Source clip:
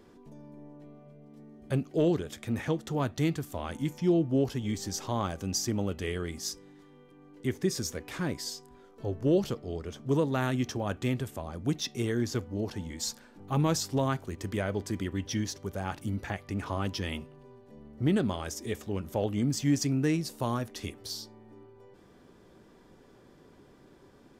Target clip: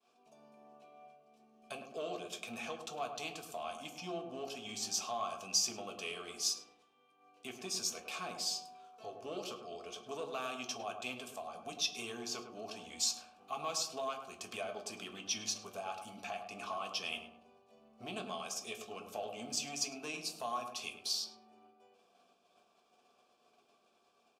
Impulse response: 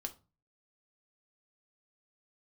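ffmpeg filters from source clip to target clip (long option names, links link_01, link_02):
-filter_complex "[0:a]asplit=2[link_01][link_02];[link_02]volume=24.5dB,asoftclip=hard,volume=-24.5dB,volume=-6dB[link_03];[link_01][link_03]amix=inputs=2:normalize=0,asplit=3[link_04][link_05][link_06];[link_04]bandpass=frequency=730:width_type=q:width=8,volume=0dB[link_07];[link_05]bandpass=frequency=1090:width_type=q:width=8,volume=-6dB[link_08];[link_06]bandpass=frequency=2440:width_type=q:width=8,volume=-9dB[link_09];[link_07][link_08][link_09]amix=inputs=3:normalize=0,acompressor=threshold=-58dB:ratio=1.5,bass=frequency=250:gain=4,treble=frequency=4000:gain=14,agate=range=-33dB:threshold=-59dB:ratio=3:detection=peak,tiltshelf=frequency=1300:gain=-8,asplit=2[link_10][link_11];[link_11]adelay=104,lowpass=frequency=960:poles=1,volume=-5dB,asplit=2[link_12][link_13];[link_13]adelay=104,lowpass=frequency=960:poles=1,volume=0.52,asplit=2[link_14][link_15];[link_15]adelay=104,lowpass=frequency=960:poles=1,volume=0.52,asplit=2[link_16][link_17];[link_17]adelay=104,lowpass=frequency=960:poles=1,volume=0.52,asplit=2[link_18][link_19];[link_19]adelay=104,lowpass=frequency=960:poles=1,volume=0.52,asplit=2[link_20][link_21];[link_21]adelay=104,lowpass=frequency=960:poles=1,volume=0.52,asplit=2[link_22][link_23];[link_23]adelay=104,lowpass=frequency=960:poles=1,volume=0.52[link_24];[link_10][link_12][link_14][link_16][link_18][link_20][link_22][link_24]amix=inputs=8:normalize=0[link_25];[1:a]atrim=start_sample=2205[link_26];[link_25][link_26]afir=irnorm=-1:irlink=0,volume=11dB"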